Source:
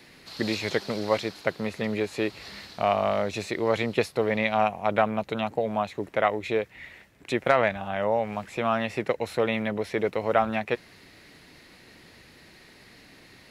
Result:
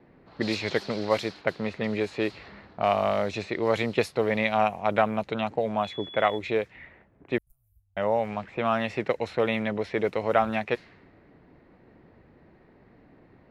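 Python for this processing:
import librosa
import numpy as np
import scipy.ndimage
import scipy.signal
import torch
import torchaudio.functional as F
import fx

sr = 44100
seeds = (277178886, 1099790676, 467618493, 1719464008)

y = fx.env_lowpass(x, sr, base_hz=820.0, full_db=-21.0)
y = fx.dmg_tone(y, sr, hz=3400.0, level_db=-40.0, at=(5.82, 6.37), fade=0.02)
y = fx.cheby2_bandstop(y, sr, low_hz=210.0, high_hz=3800.0, order=4, stop_db=70, at=(7.38, 7.97))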